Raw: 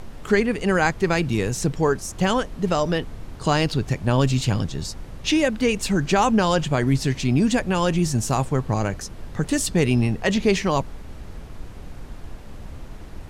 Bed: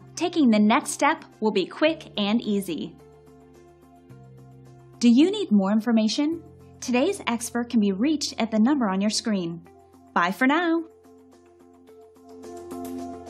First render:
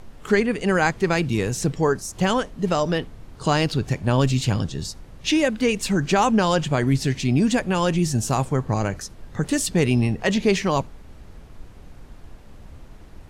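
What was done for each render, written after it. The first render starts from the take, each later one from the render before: noise print and reduce 6 dB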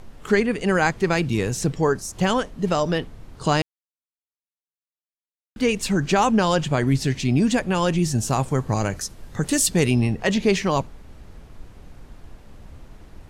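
3.62–5.56 s: mute; 8.48–9.91 s: treble shelf 5 kHz +8 dB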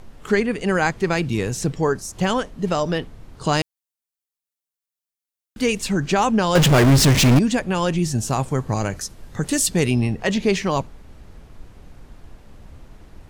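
3.53–5.81 s: treble shelf 5.3 kHz +8.5 dB; 6.55–7.39 s: power-law waveshaper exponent 0.35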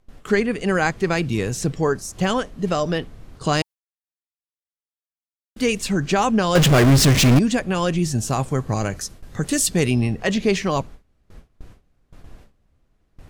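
gate with hold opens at -31 dBFS; band-stop 900 Hz, Q 12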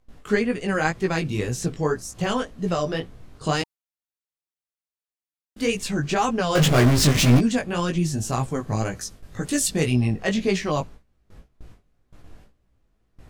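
chorus 1.9 Hz, delay 16 ms, depth 4.2 ms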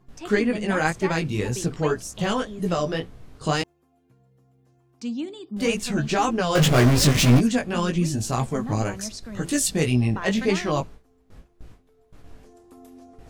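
add bed -13 dB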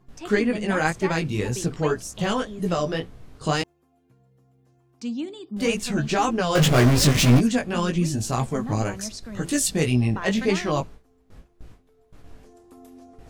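no audible change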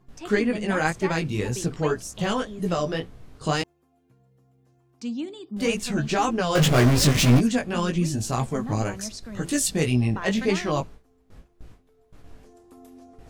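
trim -1 dB

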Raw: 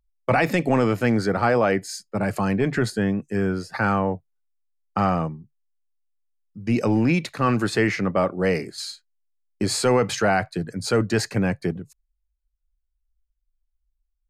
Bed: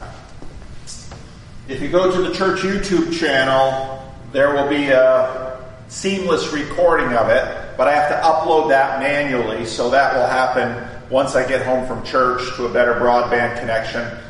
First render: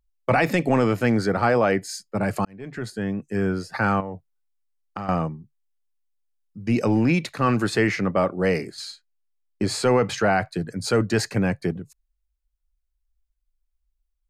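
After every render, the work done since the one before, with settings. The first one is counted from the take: 2.45–3.47 s: fade in; 4.00–5.09 s: compression 10:1, threshold -27 dBFS; 8.74–10.41 s: treble shelf 5.6 kHz -7 dB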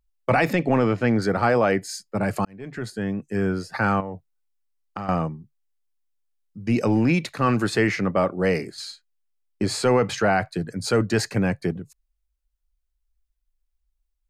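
0.53–1.22 s: distance through air 110 m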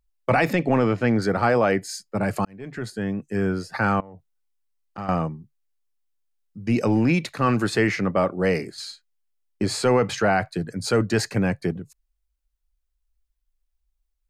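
4.00–4.98 s: compression, threshold -39 dBFS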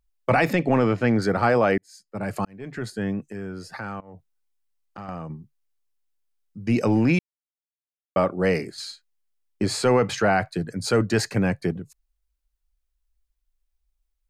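1.78–2.62 s: fade in; 3.30–5.30 s: compression 2.5:1, threshold -35 dBFS; 7.19–8.16 s: mute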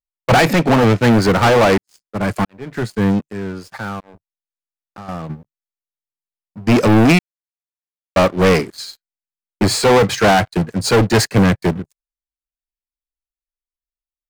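waveshaping leveller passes 5; upward expansion 2.5:1, over -19 dBFS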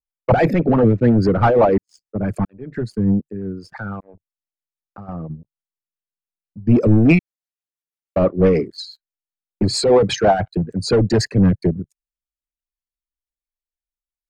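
resonances exaggerated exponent 2; rotary cabinet horn 6 Hz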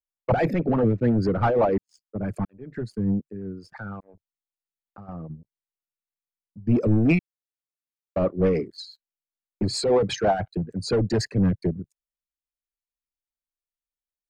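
trim -7 dB

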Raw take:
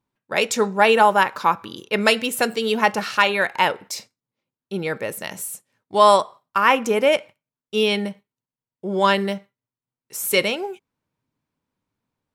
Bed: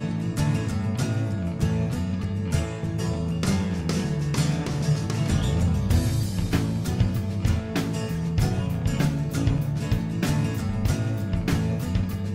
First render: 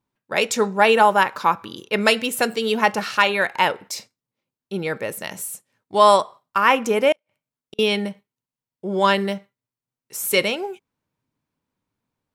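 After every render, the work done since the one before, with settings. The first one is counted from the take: 7.12–7.79 s: inverted gate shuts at -26 dBFS, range -41 dB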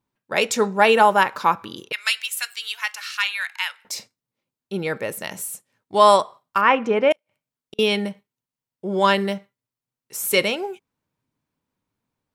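1.92–3.85 s: Bessel high-pass 2.1 kHz, order 4; 6.61–7.11 s: low-pass 2.8 kHz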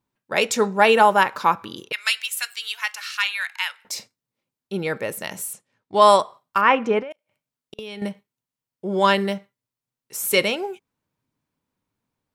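5.53–6.02 s: distance through air 64 m; 6.99–8.02 s: compression 20:1, threshold -30 dBFS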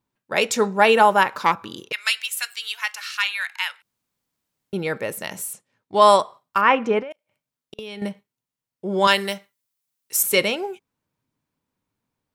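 1.41–1.93 s: self-modulated delay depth 0.12 ms; 3.82–4.73 s: room tone; 9.07–10.23 s: tilt EQ +3 dB/octave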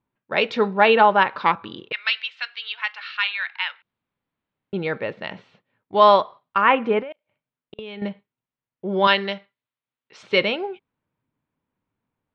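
level-controlled noise filter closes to 2.7 kHz, open at -16 dBFS; steep low-pass 4.1 kHz 36 dB/octave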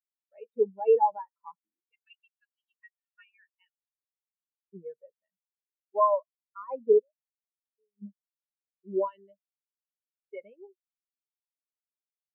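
peak limiter -11.5 dBFS, peak gain reduction 8.5 dB; spectral contrast expander 4:1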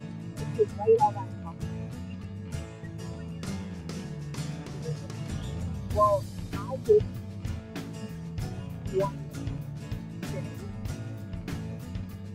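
add bed -11.5 dB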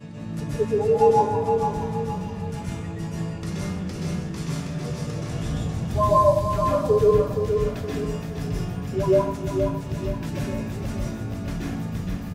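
feedback delay 469 ms, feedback 40%, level -6 dB; plate-style reverb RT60 0.7 s, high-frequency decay 0.6×, pre-delay 115 ms, DRR -5 dB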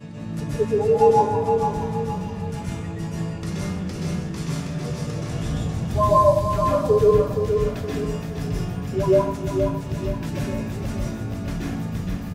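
trim +1.5 dB

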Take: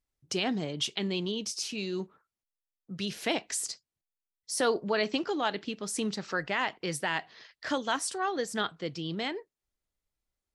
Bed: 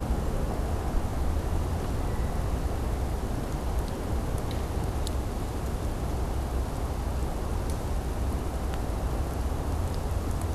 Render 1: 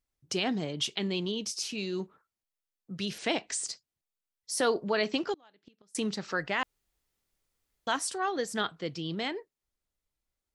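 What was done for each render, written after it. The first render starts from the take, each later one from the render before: 3.18–3.67 s: brick-wall FIR low-pass 9.5 kHz; 5.33–5.95 s: inverted gate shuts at -28 dBFS, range -30 dB; 6.63–7.87 s: room tone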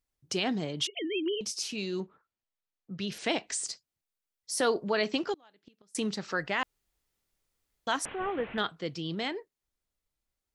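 0.87–1.41 s: formants replaced by sine waves; 2.00–3.12 s: distance through air 110 m; 8.05–8.58 s: one-bit delta coder 16 kbps, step -38.5 dBFS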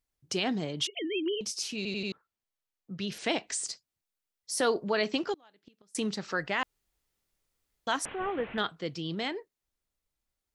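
1.76 s: stutter in place 0.09 s, 4 plays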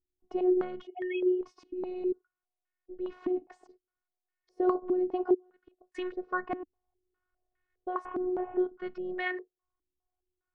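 robot voice 364 Hz; step-sequenced low-pass 4.9 Hz 300–1800 Hz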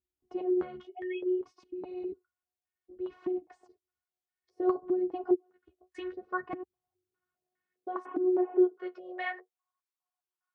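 high-pass sweep 64 Hz -> 1 kHz, 6.33–9.80 s; flange 0.6 Hz, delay 4.8 ms, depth 9.1 ms, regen +20%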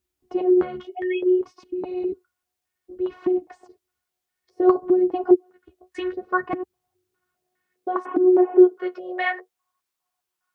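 trim +11 dB

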